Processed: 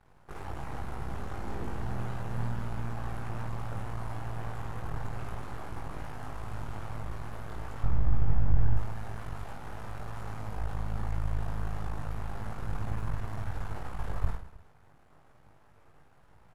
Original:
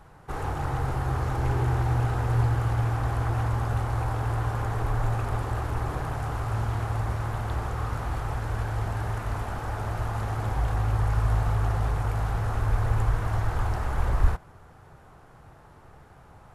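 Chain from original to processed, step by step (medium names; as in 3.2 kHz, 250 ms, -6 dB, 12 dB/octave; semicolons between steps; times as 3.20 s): half-wave rectifier; 7.83–8.77 s: RIAA curve playback; reverse bouncing-ball echo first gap 20 ms, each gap 1.6×, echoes 5; trim -8.5 dB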